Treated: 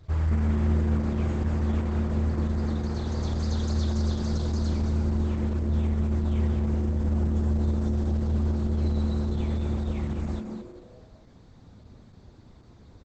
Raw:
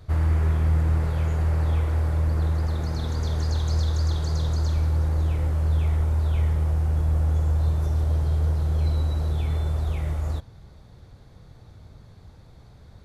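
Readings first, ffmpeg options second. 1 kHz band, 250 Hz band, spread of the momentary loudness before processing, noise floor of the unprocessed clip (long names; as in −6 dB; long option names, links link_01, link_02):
−3.0 dB, +8.0 dB, 5 LU, −49 dBFS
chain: -filter_complex "[0:a]asplit=5[link_01][link_02][link_03][link_04][link_05];[link_02]adelay=211,afreqshift=140,volume=-7dB[link_06];[link_03]adelay=422,afreqshift=280,volume=-15.6dB[link_07];[link_04]adelay=633,afreqshift=420,volume=-24.3dB[link_08];[link_05]adelay=844,afreqshift=560,volume=-32.9dB[link_09];[link_01][link_06][link_07][link_08][link_09]amix=inputs=5:normalize=0,volume=-3.5dB" -ar 48000 -c:a libopus -b:a 10k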